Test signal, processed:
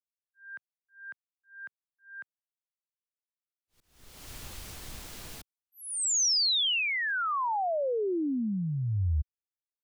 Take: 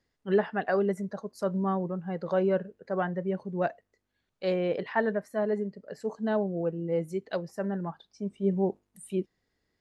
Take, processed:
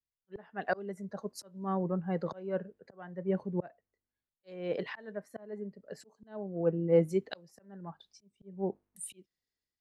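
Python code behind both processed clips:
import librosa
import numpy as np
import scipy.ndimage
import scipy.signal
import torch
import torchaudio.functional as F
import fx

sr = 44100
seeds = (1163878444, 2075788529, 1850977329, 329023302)

y = fx.auto_swell(x, sr, attack_ms=510.0)
y = fx.band_widen(y, sr, depth_pct=70)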